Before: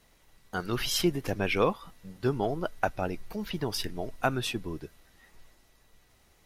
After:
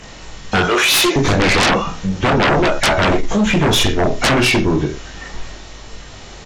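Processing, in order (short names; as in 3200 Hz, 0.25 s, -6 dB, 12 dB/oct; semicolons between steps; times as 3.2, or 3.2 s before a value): nonlinear frequency compression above 1700 Hz 1.5:1; 0.63–1.16 HPF 430 Hz 24 dB/oct; 2.38–3.35 doubler 14 ms -4 dB; on a send: reverse bouncing-ball echo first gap 20 ms, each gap 1.1×, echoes 5; on the sum: sine folder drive 17 dB, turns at -11 dBFS; in parallel at +2 dB: compressor, threshold -24 dBFS, peak gain reduction 10.5 dB; on the sum: gain -2 dB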